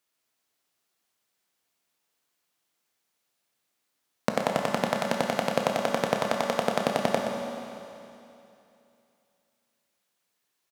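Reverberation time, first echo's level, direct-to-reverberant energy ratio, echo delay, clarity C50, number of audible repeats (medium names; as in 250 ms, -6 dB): 2.8 s, -9.5 dB, 1.0 dB, 122 ms, 2.0 dB, 1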